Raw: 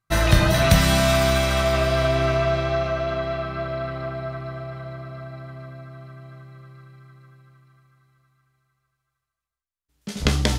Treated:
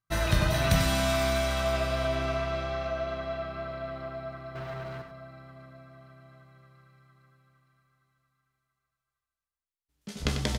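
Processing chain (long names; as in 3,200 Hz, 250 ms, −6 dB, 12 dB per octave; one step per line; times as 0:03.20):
0:04.55–0:05.02: leveller curve on the samples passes 3
on a send: single-tap delay 95 ms −7.5 dB
on the sum: level −8.5 dB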